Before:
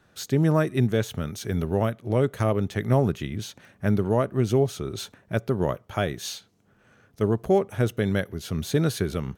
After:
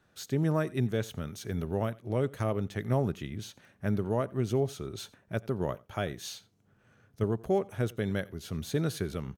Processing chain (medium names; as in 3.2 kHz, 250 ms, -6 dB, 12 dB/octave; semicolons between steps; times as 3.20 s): 6.31–7.24 s: peaking EQ 110 Hz +6.5 dB 1.2 oct; delay 88 ms -23.5 dB; trim -7 dB